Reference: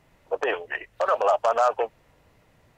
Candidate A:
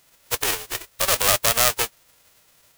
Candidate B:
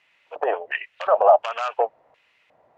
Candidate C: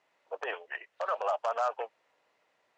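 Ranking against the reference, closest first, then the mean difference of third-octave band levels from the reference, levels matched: C, B, A; 3.0, 6.0, 16.0 decibels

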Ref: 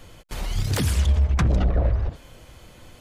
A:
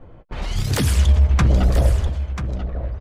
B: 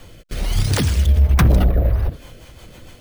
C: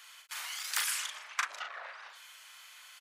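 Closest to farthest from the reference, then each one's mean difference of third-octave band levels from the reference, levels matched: B, A, C; 3.0, 5.0, 16.5 decibels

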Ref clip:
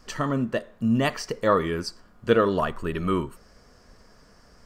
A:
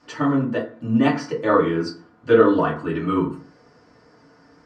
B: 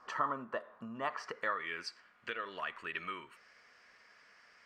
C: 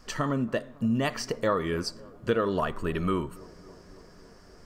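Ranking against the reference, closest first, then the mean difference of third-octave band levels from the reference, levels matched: C, A, B; 4.0, 5.5, 7.0 decibels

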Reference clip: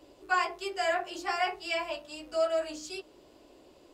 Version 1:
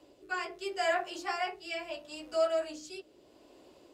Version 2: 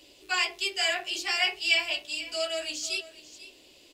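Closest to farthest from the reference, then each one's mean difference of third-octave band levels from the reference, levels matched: 1, 2; 1.5, 6.5 decibels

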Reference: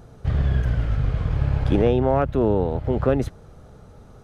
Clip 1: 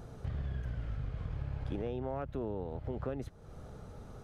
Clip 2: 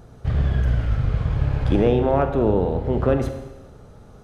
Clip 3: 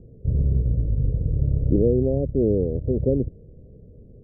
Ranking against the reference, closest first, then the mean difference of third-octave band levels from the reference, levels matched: 2, 1, 3; 1.5, 4.5, 9.5 decibels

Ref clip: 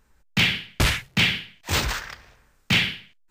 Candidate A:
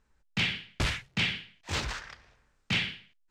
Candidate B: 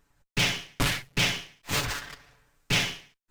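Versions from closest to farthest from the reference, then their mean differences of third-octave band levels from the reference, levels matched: A, B; 1.5, 3.5 decibels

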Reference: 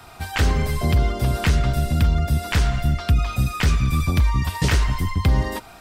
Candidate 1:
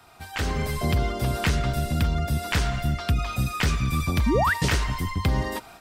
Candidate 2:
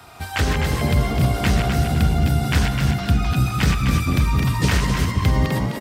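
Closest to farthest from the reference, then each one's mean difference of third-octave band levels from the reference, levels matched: 1, 2; 1.5, 4.0 decibels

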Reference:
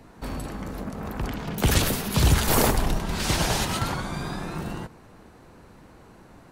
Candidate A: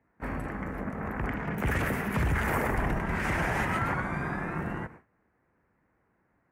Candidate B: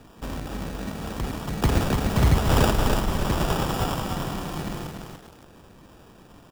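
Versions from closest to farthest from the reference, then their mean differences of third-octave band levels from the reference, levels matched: B, A; 4.0, 8.5 decibels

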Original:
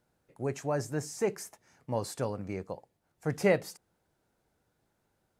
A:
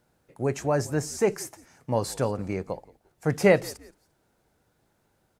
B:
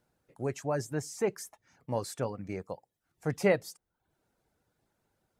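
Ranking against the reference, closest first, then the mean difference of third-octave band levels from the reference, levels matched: A, B; 1.0, 3.0 decibels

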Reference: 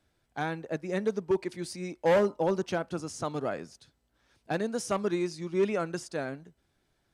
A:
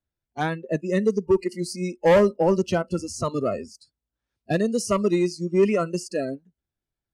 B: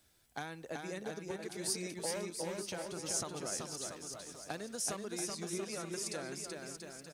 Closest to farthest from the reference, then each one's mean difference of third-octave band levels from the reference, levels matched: A, B; 5.0, 11.0 decibels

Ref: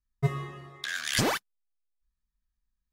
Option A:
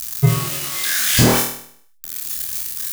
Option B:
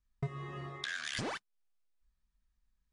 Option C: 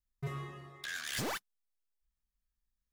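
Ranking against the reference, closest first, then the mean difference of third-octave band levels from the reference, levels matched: C, B, A; 4.0, 6.0, 9.0 decibels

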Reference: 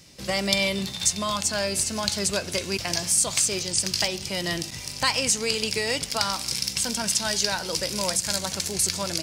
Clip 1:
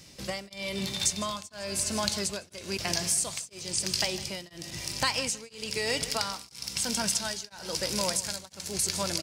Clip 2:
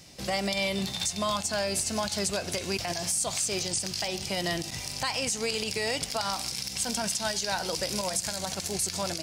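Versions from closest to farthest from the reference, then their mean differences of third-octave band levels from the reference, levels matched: 2, 1; 2.0, 5.0 decibels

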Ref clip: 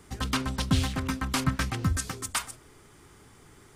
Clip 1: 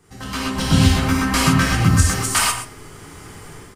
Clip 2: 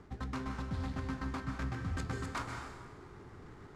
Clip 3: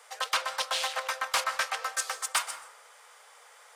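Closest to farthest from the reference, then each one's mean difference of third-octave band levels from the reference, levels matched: 1, 2, 3; 5.5, 8.5, 12.0 decibels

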